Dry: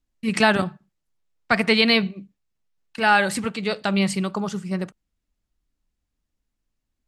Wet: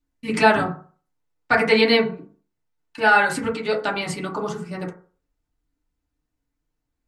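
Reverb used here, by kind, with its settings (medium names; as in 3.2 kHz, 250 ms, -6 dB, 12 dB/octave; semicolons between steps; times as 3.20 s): FDN reverb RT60 0.42 s, low-frequency decay 0.85×, high-frequency decay 0.25×, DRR -4.5 dB; trim -4 dB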